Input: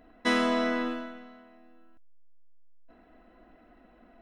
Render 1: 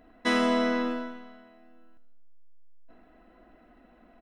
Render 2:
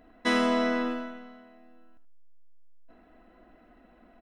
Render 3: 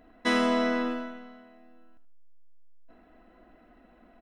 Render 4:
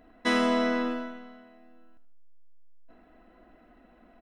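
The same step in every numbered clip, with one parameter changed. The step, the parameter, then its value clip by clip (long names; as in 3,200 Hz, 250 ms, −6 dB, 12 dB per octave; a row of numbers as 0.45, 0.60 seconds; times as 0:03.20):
repeating echo, feedback: 59, 15, 24, 39%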